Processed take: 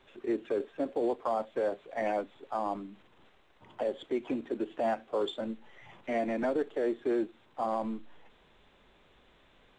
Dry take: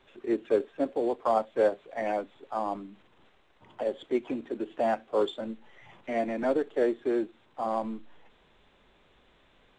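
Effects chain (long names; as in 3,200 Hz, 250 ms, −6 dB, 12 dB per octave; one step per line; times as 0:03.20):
brickwall limiter −21.5 dBFS, peak gain reduction 9 dB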